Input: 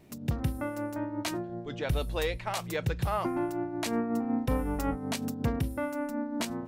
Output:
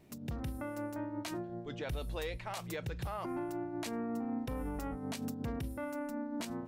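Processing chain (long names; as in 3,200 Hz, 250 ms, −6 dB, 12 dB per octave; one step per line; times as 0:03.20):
brickwall limiter −25.5 dBFS, peak gain reduction 8 dB
level −4.5 dB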